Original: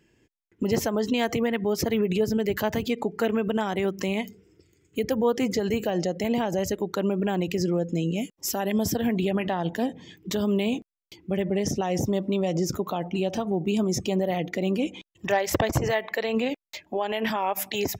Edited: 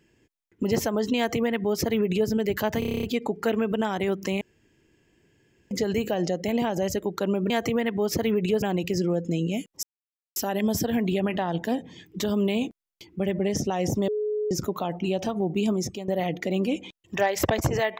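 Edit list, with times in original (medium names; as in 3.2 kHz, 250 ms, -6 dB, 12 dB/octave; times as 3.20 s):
1.17–2.29 s: copy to 7.26 s
2.79 s: stutter 0.03 s, 9 plays
4.17–5.47 s: room tone
8.47 s: insert silence 0.53 s
12.19–12.62 s: bleep 423 Hz -24 dBFS
13.83–14.19 s: fade out, to -14.5 dB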